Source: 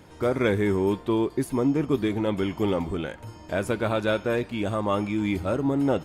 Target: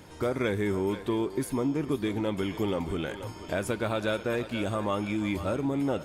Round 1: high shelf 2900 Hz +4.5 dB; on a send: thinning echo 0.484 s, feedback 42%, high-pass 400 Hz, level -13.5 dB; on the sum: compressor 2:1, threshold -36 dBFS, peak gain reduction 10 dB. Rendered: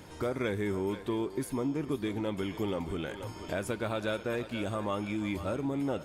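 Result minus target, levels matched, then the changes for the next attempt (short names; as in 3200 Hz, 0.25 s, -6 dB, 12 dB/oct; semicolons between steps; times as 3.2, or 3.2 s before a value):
compressor: peak gain reduction +4 dB
change: compressor 2:1, threshold -28.5 dBFS, peak gain reduction 6.5 dB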